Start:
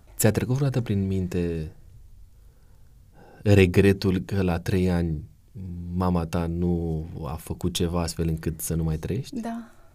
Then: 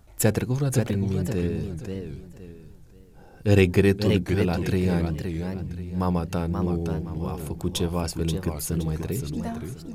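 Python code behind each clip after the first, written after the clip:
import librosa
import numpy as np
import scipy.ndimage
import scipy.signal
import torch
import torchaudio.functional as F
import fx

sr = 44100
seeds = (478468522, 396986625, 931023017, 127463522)

y = fx.echo_warbled(x, sr, ms=525, feedback_pct=30, rate_hz=2.8, cents=199, wet_db=-6.5)
y = F.gain(torch.from_numpy(y), -1.0).numpy()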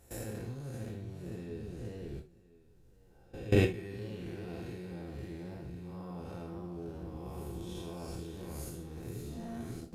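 y = fx.spec_blur(x, sr, span_ms=204.0)
y = fx.level_steps(y, sr, step_db=20)
y = fx.rev_gated(y, sr, seeds[0], gate_ms=100, shape='falling', drr_db=1.5)
y = F.gain(torch.from_numpy(y), -2.5).numpy()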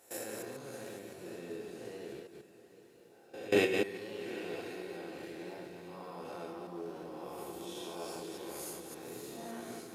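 y = fx.reverse_delay(x, sr, ms=142, wet_db=-4)
y = scipy.signal.sosfilt(scipy.signal.butter(2, 410.0, 'highpass', fs=sr, output='sos'), y)
y = fx.echo_diffused(y, sr, ms=816, feedback_pct=41, wet_db=-15)
y = F.gain(torch.from_numpy(y), 3.5).numpy()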